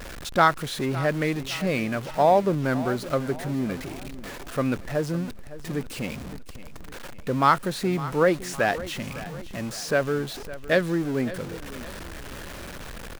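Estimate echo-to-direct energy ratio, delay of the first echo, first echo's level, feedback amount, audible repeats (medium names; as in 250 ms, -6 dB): -15.0 dB, 559 ms, -16.0 dB, 46%, 3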